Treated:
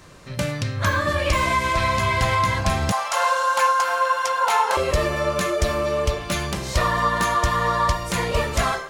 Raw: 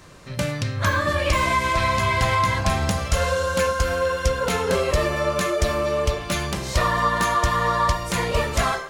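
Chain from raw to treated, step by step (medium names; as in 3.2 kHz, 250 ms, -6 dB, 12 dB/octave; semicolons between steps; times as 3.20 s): 2.92–4.77 s: resonant high-pass 890 Hz, resonance Q 4.9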